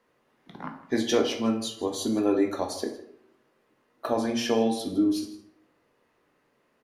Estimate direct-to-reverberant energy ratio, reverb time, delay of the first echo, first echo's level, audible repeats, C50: 3.5 dB, 0.70 s, 159 ms, −17.5 dB, 1, 8.0 dB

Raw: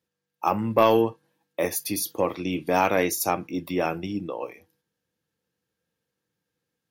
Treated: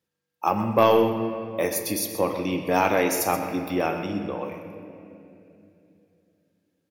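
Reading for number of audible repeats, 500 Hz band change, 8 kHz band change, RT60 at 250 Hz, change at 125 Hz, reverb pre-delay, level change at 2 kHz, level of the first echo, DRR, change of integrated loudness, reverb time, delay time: 1, +1.5 dB, +0.5 dB, 3.6 s, +1.5 dB, 18 ms, +1.0 dB, −11.5 dB, 5.0 dB, +1.0 dB, 2.9 s, 127 ms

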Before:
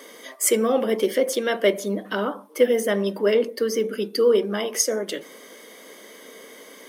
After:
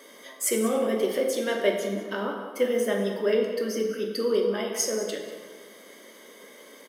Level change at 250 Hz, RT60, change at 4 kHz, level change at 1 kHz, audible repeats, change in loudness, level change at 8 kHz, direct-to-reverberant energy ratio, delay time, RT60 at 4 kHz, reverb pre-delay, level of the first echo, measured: −3.0 dB, 1.5 s, −4.5 dB, −4.0 dB, 1, −4.5 dB, −5.0 dB, 1.0 dB, 191 ms, 1.0 s, 3 ms, −14.5 dB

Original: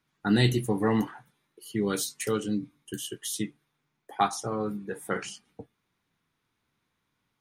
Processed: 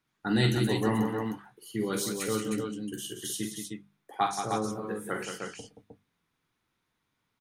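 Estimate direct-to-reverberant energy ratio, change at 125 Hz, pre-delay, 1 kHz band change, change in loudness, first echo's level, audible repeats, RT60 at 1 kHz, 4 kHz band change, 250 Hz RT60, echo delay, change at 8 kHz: no reverb audible, −1.5 dB, no reverb audible, −0.5 dB, −2.0 dB, −7.5 dB, 4, no reverb audible, −0.5 dB, no reverb audible, 46 ms, −0.5 dB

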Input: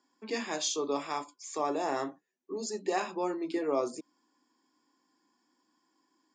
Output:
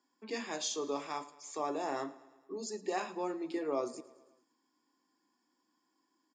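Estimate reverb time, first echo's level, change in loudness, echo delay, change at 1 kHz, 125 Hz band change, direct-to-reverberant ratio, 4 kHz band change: no reverb audible, −19.5 dB, −4.5 dB, 109 ms, −4.5 dB, −4.5 dB, no reverb audible, −4.5 dB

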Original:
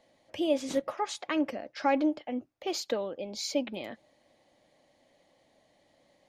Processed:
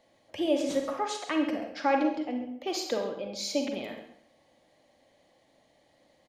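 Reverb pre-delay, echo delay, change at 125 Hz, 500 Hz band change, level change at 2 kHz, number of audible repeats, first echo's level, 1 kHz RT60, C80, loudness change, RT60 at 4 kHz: 38 ms, 134 ms, +1.5 dB, +1.5 dB, +2.0 dB, 1, −13.5 dB, 0.60 s, 8.0 dB, +1.5 dB, 0.55 s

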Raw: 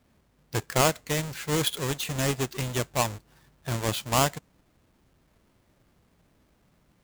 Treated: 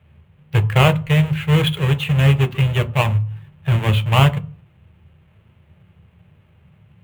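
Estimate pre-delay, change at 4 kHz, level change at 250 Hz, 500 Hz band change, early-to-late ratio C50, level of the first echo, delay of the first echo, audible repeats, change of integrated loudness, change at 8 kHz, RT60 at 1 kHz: 3 ms, +6.0 dB, +11.0 dB, +5.5 dB, 19.0 dB, no echo audible, no echo audible, no echo audible, +10.0 dB, can't be measured, 0.40 s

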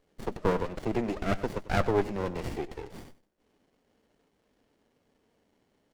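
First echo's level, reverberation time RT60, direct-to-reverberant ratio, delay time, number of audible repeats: −16.5 dB, no reverb audible, no reverb audible, 98 ms, 1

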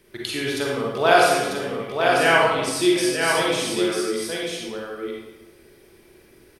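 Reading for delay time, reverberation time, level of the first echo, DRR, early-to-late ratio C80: 945 ms, 1.1 s, −4.5 dB, −5.0 dB, −0.5 dB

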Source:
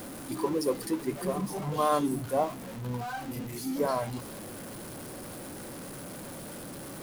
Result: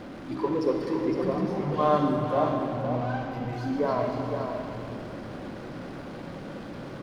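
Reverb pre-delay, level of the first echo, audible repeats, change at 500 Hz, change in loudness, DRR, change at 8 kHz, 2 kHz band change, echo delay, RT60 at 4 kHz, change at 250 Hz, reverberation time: 39 ms, −6.5 dB, 1, +4.5 dB, +4.0 dB, 1.0 dB, below −15 dB, +3.0 dB, 510 ms, 2.1 s, +4.5 dB, 2.6 s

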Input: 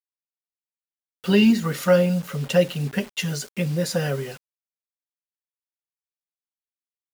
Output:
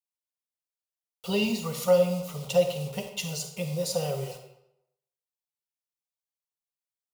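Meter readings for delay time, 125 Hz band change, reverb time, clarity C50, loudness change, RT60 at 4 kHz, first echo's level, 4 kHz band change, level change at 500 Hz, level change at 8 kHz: no echo audible, −8.5 dB, 0.80 s, 7.0 dB, −6.0 dB, 0.60 s, no echo audible, −4.0 dB, −3.0 dB, −1.5 dB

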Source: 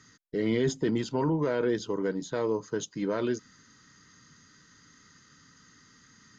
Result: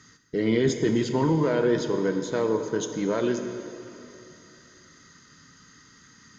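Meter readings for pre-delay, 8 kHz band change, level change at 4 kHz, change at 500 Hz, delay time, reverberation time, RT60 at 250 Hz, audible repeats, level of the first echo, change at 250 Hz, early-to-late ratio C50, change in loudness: 5 ms, can't be measured, +4.5 dB, +4.5 dB, no echo audible, 2.9 s, 3.0 s, no echo audible, no echo audible, +4.5 dB, 7.0 dB, +4.5 dB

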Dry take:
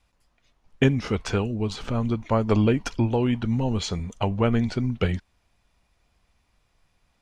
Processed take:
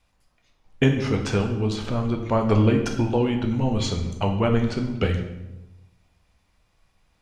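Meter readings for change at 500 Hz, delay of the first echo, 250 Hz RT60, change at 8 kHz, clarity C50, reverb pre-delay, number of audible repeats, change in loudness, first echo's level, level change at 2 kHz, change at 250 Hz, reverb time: +2.0 dB, no echo audible, 1.2 s, +1.5 dB, 7.5 dB, 10 ms, no echo audible, +1.5 dB, no echo audible, +1.5 dB, +1.0 dB, 0.95 s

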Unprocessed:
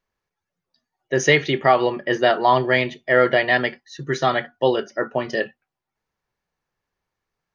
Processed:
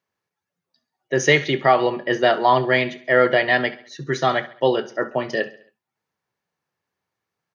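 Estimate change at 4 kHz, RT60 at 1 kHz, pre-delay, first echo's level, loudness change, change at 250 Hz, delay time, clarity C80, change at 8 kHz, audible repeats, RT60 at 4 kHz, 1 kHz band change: 0.0 dB, no reverb audible, no reverb audible, −18.0 dB, 0.0 dB, 0.0 dB, 68 ms, no reverb audible, can't be measured, 3, no reverb audible, 0.0 dB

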